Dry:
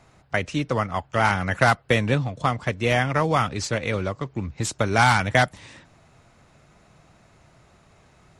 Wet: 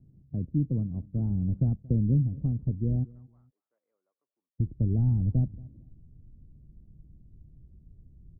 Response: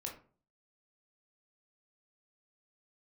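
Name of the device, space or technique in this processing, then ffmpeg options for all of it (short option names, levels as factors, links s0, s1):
the neighbour's flat through the wall: -filter_complex "[0:a]asplit=3[s0][s1][s2];[s0]afade=t=out:st=3.03:d=0.02[s3];[s1]highpass=f=1300:w=0.5412,highpass=f=1300:w=1.3066,afade=t=in:st=3.03:d=0.02,afade=t=out:st=4.58:d=0.02[s4];[s2]afade=t=in:st=4.58:d=0.02[s5];[s3][s4][s5]amix=inputs=3:normalize=0,asubboost=boost=6.5:cutoff=58,lowpass=f=280:w=0.5412,lowpass=f=280:w=1.3066,equalizer=f=150:t=o:w=0.77:g=4,aecho=1:1:228|456:0.075|0.0187"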